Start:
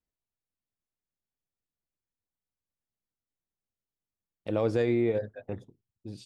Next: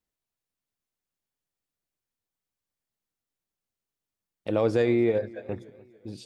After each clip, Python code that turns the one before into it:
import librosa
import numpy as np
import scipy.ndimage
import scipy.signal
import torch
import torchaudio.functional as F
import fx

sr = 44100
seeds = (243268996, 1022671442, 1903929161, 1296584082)

y = fx.low_shelf(x, sr, hz=140.0, db=-5.0)
y = fx.echo_warbled(y, sr, ms=290, feedback_pct=48, rate_hz=2.8, cents=61, wet_db=-22)
y = y * 10.0 ** (4.0 / 20.0)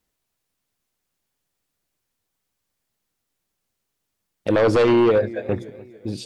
y = fx.fold_sine(x, sr, drive_db=7, ceiling_db=-12.0)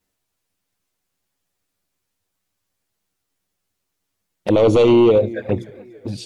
y = fx.env_flanger(x, sr, rest_ms=10.8, full_db=-19.0)
y = y * 10.0 ** (4.5 / 20.0)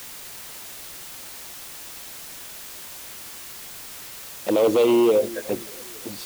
y = scipy.signal.sosfilt(scipy.signal.butter(2, 260.0, 'highpass', fs=sr, output='sos'), x)
y = fx.dmg_noise_colour(y, sr, seeds[0], colour='white', level_db=-35.0)
y = y * 10.0 ** (-4.0 / 20.0)